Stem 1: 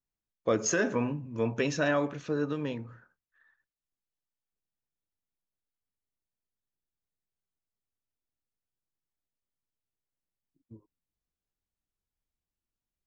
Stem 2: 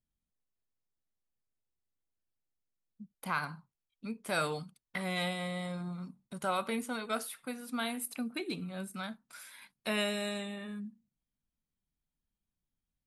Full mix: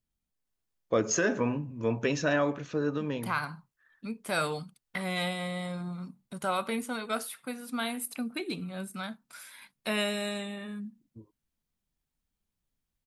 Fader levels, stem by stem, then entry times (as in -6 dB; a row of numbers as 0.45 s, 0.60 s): +0.5 dB, +2.5 dB; 0.45 s, 0.00 s